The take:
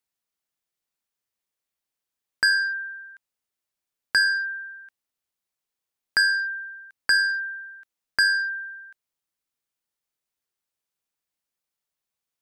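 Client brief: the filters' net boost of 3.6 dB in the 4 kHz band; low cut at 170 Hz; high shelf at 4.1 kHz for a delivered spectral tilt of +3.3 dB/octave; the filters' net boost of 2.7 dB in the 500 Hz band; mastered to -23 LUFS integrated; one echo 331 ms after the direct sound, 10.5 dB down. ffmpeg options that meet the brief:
-af "highpass=170,equalizer=f=500:t=o:g=3.5,equalizer=f=4000:t=o:g=7.5,highshelf=f=4100:g=-3.5,aecho=1:1:331:0.299,volume=0.841"

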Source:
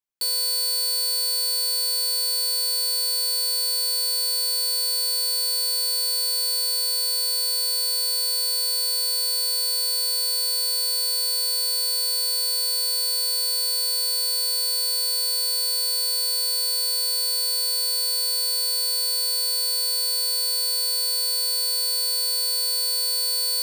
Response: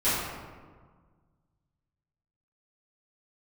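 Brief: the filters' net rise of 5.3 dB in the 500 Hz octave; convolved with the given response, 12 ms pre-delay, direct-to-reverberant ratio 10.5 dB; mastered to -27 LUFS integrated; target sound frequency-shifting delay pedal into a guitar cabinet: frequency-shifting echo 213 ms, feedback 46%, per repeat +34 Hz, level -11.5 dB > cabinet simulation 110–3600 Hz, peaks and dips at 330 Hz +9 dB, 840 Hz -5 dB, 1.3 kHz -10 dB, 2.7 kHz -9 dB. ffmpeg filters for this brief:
-filter_complex "[0:a]equalizer=f=500:t=o:g=5,asplit=2[s0][s1];[1:a]atrim=start_sample=2205,adelay=12[s2];[s1][s2]afir=irnorm=-1:irlink=0,volume=0.0596[s3];[s0][s3]amix=inputs=2:normalize=0,asplit=6[s4][s5][s6][s7][s8][s9];[s5]adelay=213,afreqshift=34,volume=0.266[s10];[s6]adelay=426,afreqshift=68,volume=0.123[s11];[s7]adelay=639,afreqshift=102,volume=0.0562[s12];[s8]adelay=852,afreqshift=136,volume=0.026[s13];[s9]adelay=1065,afreqshift=170,volume=0.0119[s14];[s4][s10][s11][s12][s13][s14]amix=inputs=6:normalize=0,highpass=110,equalizer=f=330:t=q:w=4:g=9,equalizer=f=840:t=q:w=4:g=-5,equalizer=f=1300:t=q:w=4:g=-10,equalizer=f=2700:t=q:w=4:g=-9,lowpass=f=3600:w=0.5412,lowpass=f=3600:w=1.3066,volume=1.41"

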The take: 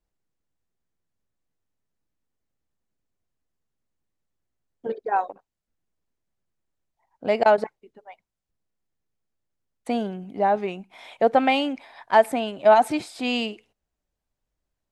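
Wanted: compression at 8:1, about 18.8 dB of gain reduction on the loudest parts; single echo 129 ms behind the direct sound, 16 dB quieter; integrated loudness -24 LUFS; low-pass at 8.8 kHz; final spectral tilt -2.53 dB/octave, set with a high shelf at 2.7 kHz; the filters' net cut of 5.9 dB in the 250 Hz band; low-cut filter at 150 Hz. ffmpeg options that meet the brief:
-af "highpass=150,lowpass=8800,equalizer=f=250:t=o:g=-6,highshelf=f=2700:g=-5,acompressor=threshold=0.0251:ratio=8,aecho=1:1:129:0.158,volume=5.01"

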